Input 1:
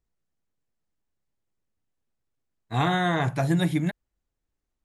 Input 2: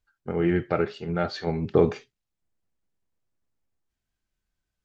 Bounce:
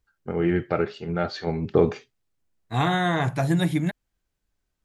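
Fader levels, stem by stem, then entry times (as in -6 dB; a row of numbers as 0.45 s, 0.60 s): +1.0 dB, +0.5 dB; 0.00 s, 0.00 s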